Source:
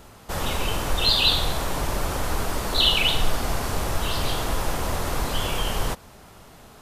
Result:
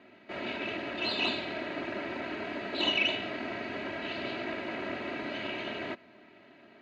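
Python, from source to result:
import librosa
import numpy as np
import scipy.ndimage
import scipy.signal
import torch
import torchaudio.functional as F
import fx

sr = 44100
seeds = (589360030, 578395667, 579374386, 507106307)

y = fx.lower_of_two(x, sr, delay_ms=0.45)
y = scipy.signal.sosfilt(scipy.signal.ellip(3, 1.0, 80, [160.0, 3100.0], 'bandpass', fs=sr, output='sos'), y)
y = y + 0.82 * np.pad(y, (int(3.1 * sr / 1000.0), 0))[:len(y)]
y = F.gain(torch.from_numpy(y), -5.5).numpy()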